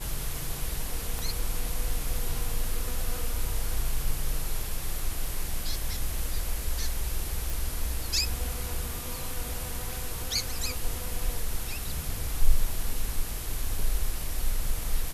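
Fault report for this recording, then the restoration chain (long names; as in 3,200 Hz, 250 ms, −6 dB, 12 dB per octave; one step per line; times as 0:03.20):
0:01.19: click
0:07.50: click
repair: click removal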